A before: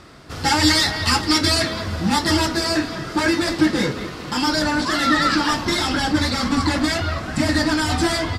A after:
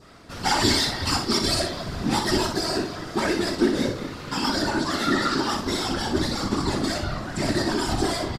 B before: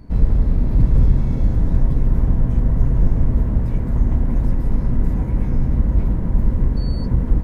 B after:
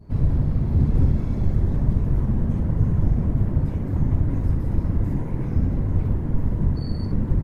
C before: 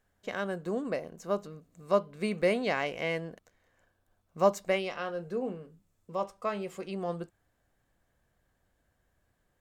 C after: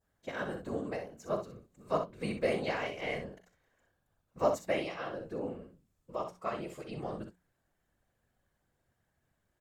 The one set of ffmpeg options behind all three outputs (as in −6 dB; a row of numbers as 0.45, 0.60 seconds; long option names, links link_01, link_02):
-filter_complex "[0:a]adynamicequalizer=threshold=0.0158:dfrequency=2100:dqfactor=1.1:tfrequency=2100:tqfactor=1.1:attack=5:release=100:ratio=0.375:range=3.5:mode=cutabove:tftype=bell,afftfilt=real='hypot(re,im)*cos(2*PI*random(0))':imag='hypot(re,im)*sin(2*PI*random(1))':win_size=512:overlap=0.75,bandreject=frequency=60:width_type=h:width=6,bandreject=frequency=120:width_type=h:width=6,bandreject=frequency=180:width_type=h:width=6,asplit=2[link_01][link_02];[link_02]aecho=0:1:40|62:0.224|0.398[link_03];[link_01][link_03]amix=inputs=2:normalize=0,volume=1.5dB"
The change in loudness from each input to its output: −5.0, −3.0, −4.0 LU